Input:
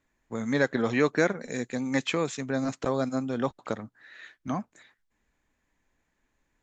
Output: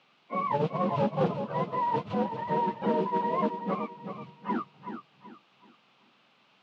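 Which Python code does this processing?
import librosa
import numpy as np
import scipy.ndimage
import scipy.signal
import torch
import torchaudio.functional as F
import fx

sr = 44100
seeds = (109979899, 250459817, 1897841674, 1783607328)

p1 = fx.octave_mirror(x, sr, pivot_hz=500.0)
p2 = fx.env_lowpass_down(p1, sr, base_hz=540.0, full_db=-23.5)
p3 = fx.mod_noise(p2, sr, seeds[0], snr_db=17)
p4 = fx.quant_dither(p3, sr, seeds[1], bits=8, dither='triangular')
p5 = p3 + (p4 * 10.0 ** (-11.0 / 20.0))
p6 = fx.cabinet(p5, sr, low_hz=180.0, low_slope=24, high_hz=3600.0, hz=(200.0, 790.0, 1200.0, 1800.0, 2700.0), db=(6, 4, 5, -6, 5))
p7 = p6 + fx.echo_feedback(p6, sr, ms=378, feedback_pct=32, wet_db=-9.0, dry=0)
y = fx.transformer_sat(p7, sr, knee_hz=500.0)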